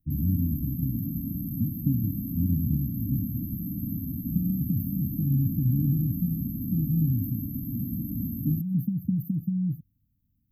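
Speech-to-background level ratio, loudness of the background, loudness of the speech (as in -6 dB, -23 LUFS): 3.5 dB, -32.5 LUFS, -29.0 LUFS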